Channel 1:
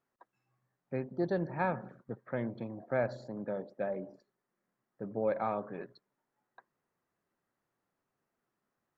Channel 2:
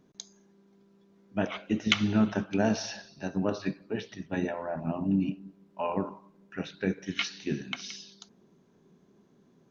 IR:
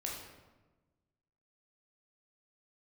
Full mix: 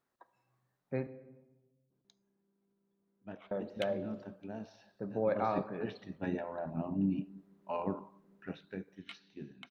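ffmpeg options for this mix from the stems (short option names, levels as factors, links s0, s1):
-filter_complex "[0:a]volume=0.841,asplit=3[s0][s1][s2];[s0]atrim=end=1.07,asetpts=PTS-STARTPTS,afade=t=out:st=1.066:d=0.004:c=hsin[s3];[s1]atrim=start=1.07:end=3.51,asetpts=PTS-STARTPTS,volume=0[s4];[s2]atrim=start=3.51,asetpts=PTS-STARTPTS,afade=t=in:d=0.004:c=hsin[s5];[s3][s4][s5]concat=n=3:v=0:a=1,asplit=2[s6][s7];[s7]volume=0.335[s8];[1:a]adynamicequalizer=threshold=0.00316:dfrequency=1900:dqfactor=1.4:tfrequency=1900:tqfactor=1.4:attack=5:release=100:ratio=0.375:range=2.5:mode=cutabove:tftype=bell,adynamicsmooth=sensitivity=1:basefreq=2900,adelay=1900,volume=0.562,afade=t=in:st=5.32:d=0.21:silence=0.237137,afade=t=out:st=8.36:d=0.46:silence=0.316228[s9];[2:a]atrim=start_sample=2205[s10];[s8][s10]afir=irnorm=-1:irlink=0[s11];[s6][s9][s11]amix=inputs=3:normalize=0,equalizer=f=3900:t=o:w=0.31:g=4"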